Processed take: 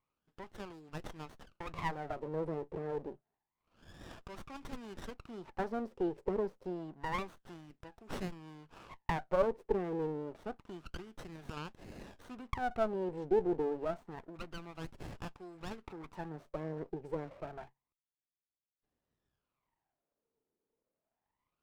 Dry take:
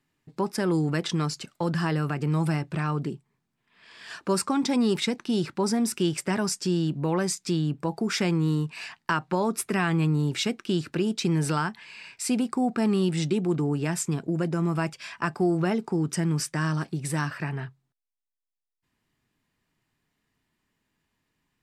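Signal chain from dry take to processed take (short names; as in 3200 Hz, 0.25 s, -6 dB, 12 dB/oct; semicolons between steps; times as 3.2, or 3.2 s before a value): dynamic EQ 2000 Hz, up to -4 dB, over -40 dBFS, Q 0.75; wah 0.28 Hz 450–2500 Hz, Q 7.3; running maximum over 17 samples; gain +6.5 dB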